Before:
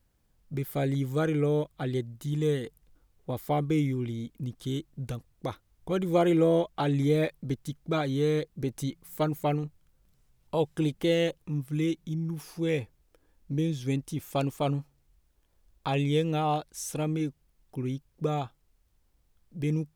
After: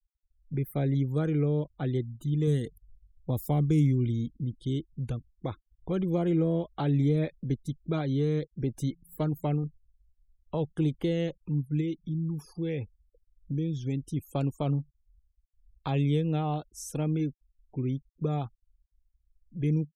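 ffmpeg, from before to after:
-filter_complex "[0:a]asettb=1/sr,asplit=3[a][b][c];[a]atrim=end=2.474[d];[b]atrim=start=2.47:end=4.36,asetpts=PTS-STARTPTS,afade=t=in:d=0.004:c=qsin,afade=t=out:st=1.886:d=0.004:c=qsin,bass=f=250:g=4,treble=f=4k:g=9[e];[c]atrim=start=4.356[f];[d][e]acrossfade=d=0.004:c1=hsin:c2=qsin[g];[g][f]acrossfade=d=0.004:c1=qsin:c2=hsin,asplit=3[h][i][j];[h]afade=t=out:st=11.8:d=0.02[k];[i]acompressor=threshold=-30dB:ratio=2:attack=3.2:release=140:knee=1:detection=peak,afade=t=in:st=11.8:d=0.02,afade=t=out:st=14.08:d=0.02[l];[j]afade=t=in:st=14.08:d=0.02[m];[k][l][m]amix=inputs=3:normalize=0,afftfilt=real='re*gte(hypot(re,im),0.00501)':imag='im*gte(hypot(re,im),0.00501)':win_size=1024:overlap=0.75,lowshelf=f=380:g=7.5,acrossover=split=280[n][o];[o]acompressor=threshold=-26dB:ratio=5[p];[n][p]amix=inputs=2:normalize=0,volume=-4dB"

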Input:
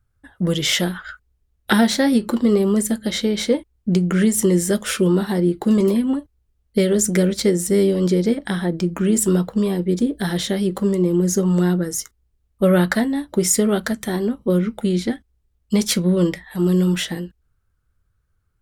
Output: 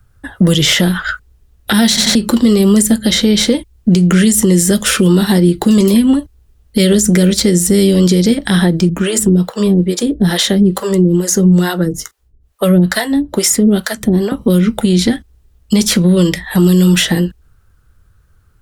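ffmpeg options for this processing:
-filter_complex "[0:a]asettb=1/sr,asplit=3[a][b][c];[a]atrim=end=8.894[d];[b]atrim=start=8.89:end=14.32,asetpts=PTS-STARTPTS,afade=t=in:d=0.004:c=qsin,afade=t=out:st=5.426:d=0.004:c=qsin,acrossover=split=500[e][f];[e]aeval=exprs='val(0)*(1-1/2+1/2*cos(2*PI*2.3*n/s))':c=same[g];[f]aeval=exprs='val(0)*(1-1/2-1/2*cos(2*PI*2.3*n/s))':c=same[h];[g][h]amix=inputs=2:normalize=0[i];[c]atrim=start=14.316[j];[d][i]acrossfade=d=0.004:c1=hsin:c2=qsin[k];[k][j]acrossfade=d=0.004:c1=qsin:c2=hsin,asettb=1/sr,asplit=3[l][m][n];[l]atrim=end=14.854[o];[m]atrim=start=14.85:end=15.81,asetpts=PTS-STARTPTS,afade=t=in:d=0.004:c=qsin,afade=t=out:st=0.956:d=0.004:c=qsin,acompressor=threshold=-21dB:ratio=2:attack=3.2:release=140:knee=1:detection=peak[p];[n]atrim=start=15.806[q];[o][p]acrossfade=d=0.004:c1=hsin:c2=qsin[r];[r][q]acrossfade=d=0.004:c1=qsin:c2=hsin,asplit=4[s][t][u][v];[s]atrim=end=1.972[w];[t]atrim=start=1.878:end=1.972[x];[u]atrim=start=1.878:end=1.972[y];[v]atrim=start=2.148[z];[w][x]acrossfade=d=0.004:c1=hsin:c2=hsin[aa];[aa][y]acrossfade=d=0.004:c1=hsin:c2=hsin[ab];[ab][z]acrossfade=d=0.004:c1=hsin:c2=hsin,bandreject=f=2.2k:w=22,acrossover=split=190|2400[ac][ad][ae];[ac]acompressor=threshold=-28dB:ratio=4[af];[ad]acompressor=threshold=-31dB:ratio=4[ag];[ae]acompressor=threshold=-29dB:ratio=4[ah];[af][ag][ah]amix=inputs=3:normalize=0,alimiter=level_in=18dB:limit=-1dB:release=50:level=0:latency=1,volume=-1dB"

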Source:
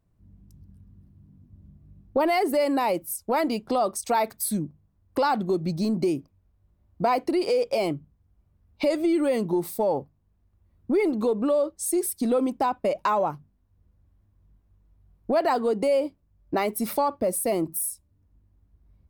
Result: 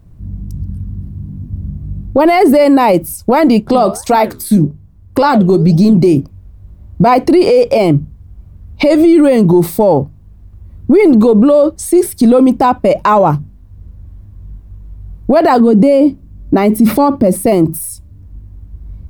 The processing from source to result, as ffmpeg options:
-filter_complex "[0:a]asettb=1/sr,asplit=3[a][b][c];[a]atrim=end=3.604[d];[b]atrim=start=3.6:end=6.17,asetpts=PTS-STARTPTS,afade=t=in:d=0.004:c=qsin,afade=t=out:st=2.566:d=0.004:c=qsin,flanger=delay=5.9:depth=8.7:regen=-78:speed=1.8:shape=sinusoidal[e];[c]atrim=start=6.166[f];[d][e]acrossfade=d=0.004:c1=hsin:c2=qsin[g];[g][f]acrossfade=d=0.004:c1=qsin:c2=hsin,asettb=1/sr,asplit=3[h][i][j];[h]atrim=end=15.604[k];[i]atrim=start=15.6:end=17.46,asetpts=PTS-STARTPTS,afade=t=in:d=0.004:c=qsin,afade=t=out:st=1.856:d=0.004:c=qsin,equalizer=f=250:w=1.5:g=10.5[l];[j]atrim=start=17.456[m];[k][l]acrossfade=d=0.004:c1=hsin:c2=qsin[n];[n][m]acrossfade=d=0.004:c1=qsin:c2=hsin,acrossover=split=3200[o][p];[p]acompressor=threshold=-40dB:ratio=4:attack=1:release=60[q];[o][q]amix=inputs=2:normalize=0,lowshelf=f=250:g=11.5,alimiter=level_in=19.5dB:limit=-1dB:release=50:level=0:latency=1,volume=-1dB"

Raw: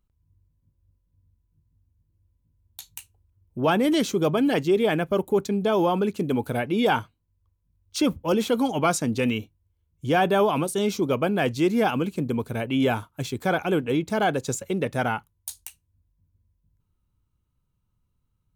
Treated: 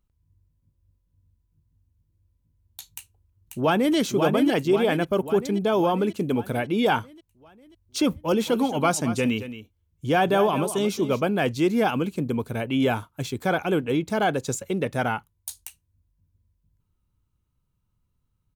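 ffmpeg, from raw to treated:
-filter_complex "[0:a]asplit=2[a][b];[b]afade=t=in:st=2.92:d=0.01,afade=t=out:st=3.96:d=0.01,aecho=0:1:540|1080|1620|2160|2700|3240|3780|4320:0.562341|0.337405|0.202443|0.121466|0.0728794|0.0437277|0.0262366|0.015742[c];[a][c]amix=inputs=2:normalize=0,asettb=1/sr,asplit=3[d][e][f];[d]atrim=end=8.184[g];[e]atrim=start=8.18:end=11.23,asetpts=PTS-STARTPTS,afade=t=in:d=0.004:c=qsin,afade=t=out:st=3.046:d=0.004:c=qsin,aecho=1:1:222:0.237,atrim=end_sample=134505[h];[f]atrim=start=11.226[i];[g][h]acrossfade=d=0.004:c1=hsin:c2=qsin[j];[j][i]acrossfade=d=0.004:c1=qsin:c2=hsin"

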